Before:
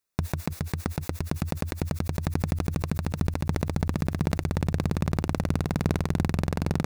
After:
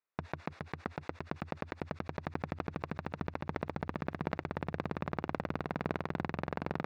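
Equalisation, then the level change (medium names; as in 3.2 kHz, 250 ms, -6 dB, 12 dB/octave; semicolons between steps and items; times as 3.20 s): high-pass 1.2 kHz 6 dB/octave; tape spacing loss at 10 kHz 36 dB; treble shelf 5.1 kHz -8 dB; +5.0 dB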